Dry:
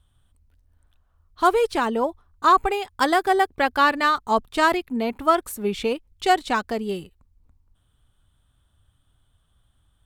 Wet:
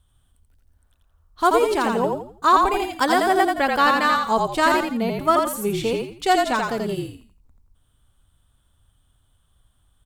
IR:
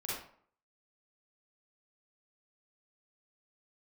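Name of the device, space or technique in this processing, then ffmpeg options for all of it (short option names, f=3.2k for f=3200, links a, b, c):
exciter from parts: -filter_complex "[0:a]asplit=5[a][b][c][d][e];[b]adelay=84,afreqshift=-40,volume=-3dB[f];[c]adelay=168,afreqshift=-80,volume=-12.6dB[g];[d]adelay=252,afreqshift=-120,volume=-22.3dB[h];[e]adelay=336,afreqshift=-160,volume=-31.9dB[i];[a][f][g][h][i]amix=inputs=5:normalize=0,asplit=2[j][k];[k]highpass=4.2k,asoftclip=type=tanh:threshold=-31dB,volume=-4.5dB[l];[j][l]amix=inputs=2:normalize=0"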